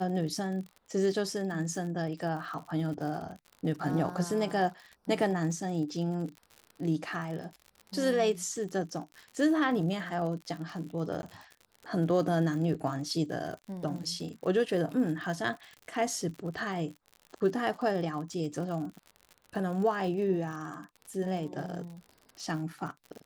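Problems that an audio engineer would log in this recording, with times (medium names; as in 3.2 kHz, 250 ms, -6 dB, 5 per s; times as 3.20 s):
crackle 67 per s -39 dBFS
11.22–11.23 s: dropout 11 ms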